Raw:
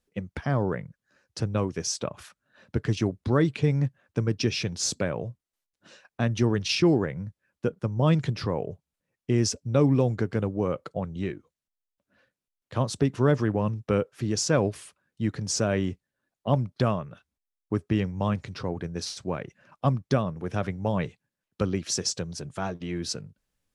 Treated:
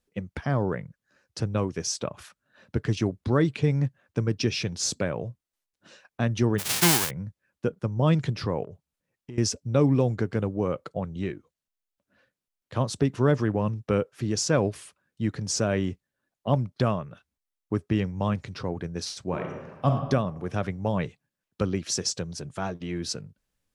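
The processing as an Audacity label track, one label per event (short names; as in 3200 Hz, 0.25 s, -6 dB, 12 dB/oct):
6.580000	7.090000	spectral whitening exponent 0.1
8.640000	9.380000	compressor, threshold -37 dBFS
19.250000	19.880000	reverb throw, RT60 1.2 s, DRR 2 dB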